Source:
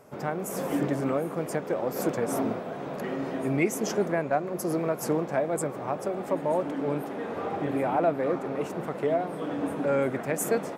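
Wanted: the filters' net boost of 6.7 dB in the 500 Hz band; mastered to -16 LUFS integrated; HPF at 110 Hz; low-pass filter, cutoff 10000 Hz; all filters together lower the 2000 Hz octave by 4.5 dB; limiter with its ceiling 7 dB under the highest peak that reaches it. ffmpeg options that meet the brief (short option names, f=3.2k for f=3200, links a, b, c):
-af "highpass=110,lowpass=10k,equalizer=f=500:t=o:g=8.5,equalizer=f=2k:t=o:g=-6.5,volume=10dB,alimiter=limit=-5.5dB:level=0:latency=1"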